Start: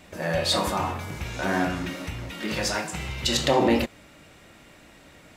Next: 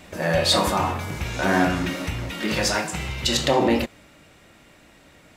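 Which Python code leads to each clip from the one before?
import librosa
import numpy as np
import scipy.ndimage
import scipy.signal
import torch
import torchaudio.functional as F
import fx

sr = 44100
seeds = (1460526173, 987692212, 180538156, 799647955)

y = fx.rider(x, sr, range_db=4, speed_s=2.0)
y = F.gain(torch.from_numpy(y), 3.0).numpy()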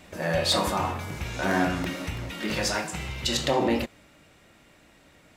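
y = fx.buffer_crackle(x, sr, first_s=0.52, period_s=0.33, block=64, kind='repeat')
y = F.gain(torch.from_numpy(y), -4.5).numpy()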